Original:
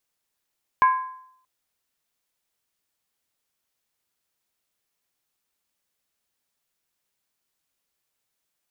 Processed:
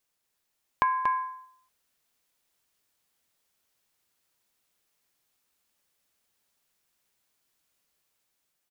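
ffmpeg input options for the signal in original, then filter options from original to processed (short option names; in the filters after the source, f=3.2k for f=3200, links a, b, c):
-f lavfi -i "aevalsrc='0.266*pow(10,-3*t/0.69)*sin(2*PI*1030*t)+0.0841*pow(10,-3*t/0.547)*sin(2*PI*1641.8*t)+0.0266*pow(10,-3*t/0.472)*sin(2*PI*2200.1*t)+0.00841*pow(10,-3*t/0.455)*sin(2*PI*2364.9*t)+0.00266*pow(10,-3*t/0.424)*sin(2*PI*2732.6*t)':d=0.63:s=44100"
-filter_complex "[0:a]dynaudnorm=f=370:g=5:m=3dB,asplit=2[a][b];[b]aecho=0:1:235:0.422[c];[a][c]amix=inputs=2:normalize=0,acompressor=threshold=-22dB:ratio=6"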